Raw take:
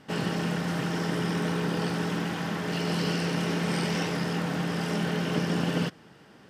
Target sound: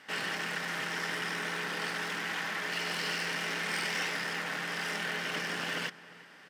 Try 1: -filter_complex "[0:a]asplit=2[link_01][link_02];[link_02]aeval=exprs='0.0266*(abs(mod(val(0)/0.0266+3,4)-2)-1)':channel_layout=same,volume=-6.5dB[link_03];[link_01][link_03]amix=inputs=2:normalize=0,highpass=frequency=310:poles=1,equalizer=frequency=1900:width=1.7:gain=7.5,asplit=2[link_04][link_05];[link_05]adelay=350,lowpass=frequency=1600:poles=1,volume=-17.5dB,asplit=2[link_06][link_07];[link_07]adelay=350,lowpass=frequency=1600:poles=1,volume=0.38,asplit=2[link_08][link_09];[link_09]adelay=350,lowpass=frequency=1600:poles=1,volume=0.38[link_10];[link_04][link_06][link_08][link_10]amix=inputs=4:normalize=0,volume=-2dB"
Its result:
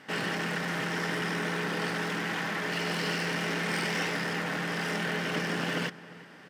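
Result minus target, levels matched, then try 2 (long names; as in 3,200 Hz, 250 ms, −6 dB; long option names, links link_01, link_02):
250 Hz band +7.5 dB
-filter_complex "[0:a]asplit=2[link_01][link_02];[link_02]aeval=exprs='0.0266*(abs(mod(val(0)/0.0266+3,4)-2)-1)':channel_layout=same,volume=-6.5dB[link_03];[link_01][link_03]amix=inputs=2:normalize=0,highpass=frequency=1200:poles=1,equalizer=frequency=1900:width=1.7:gain=7.5,asplit=2[link_04][link_05];[link_05]adelay=350,lowpass=frequency=1600:poles=1,volume=-17.5dB,asplit=2[link_06][link_07];[link_07]adelay=350,lowpass=frequency=1600:poles=1,volume=0.38,asplit=2[link_08][link_09];[link_09]adelay=350,lowpass=frequency=1600:poles=1,volume=0.38[link_10];[link_04][link_06][link_08][link_10]amix=inputs=4:normalize=0,volume=-2dB"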